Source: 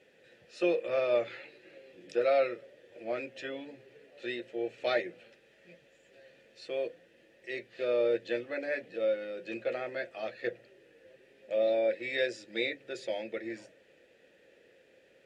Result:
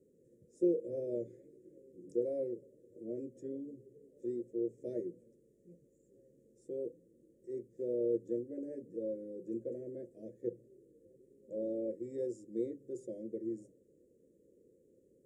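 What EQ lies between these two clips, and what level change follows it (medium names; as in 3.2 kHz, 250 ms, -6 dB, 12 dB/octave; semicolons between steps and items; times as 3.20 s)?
inverse Chebyshev band-stop 750–4500 Hz, stop band 40 dB; treble shelf 5.8 kHz -7.5 dB; +2.0 dB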